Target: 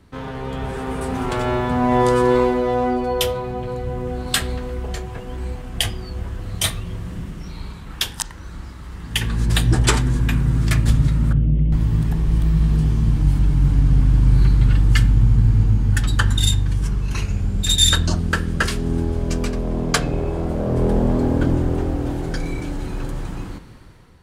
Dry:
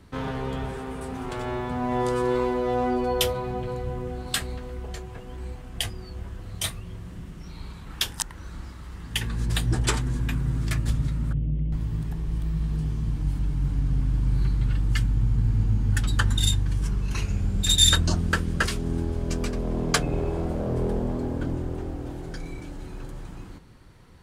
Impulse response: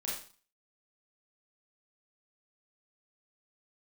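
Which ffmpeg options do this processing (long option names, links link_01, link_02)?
-filter_complex "[0:a]asplit=2[link_01][link_02];[1:a]atrim=start_sample=2205,lowpass=4300[link_03];[link_02][link_03]afir=irnorm=-1:irlink=0,volume=-16dB[link_04];[link_01][link_04]amix=inputs=2:normalize=0,dynaudnorm=framelen=300:gausssize=5:maxgain=11dB,volume=-1dB"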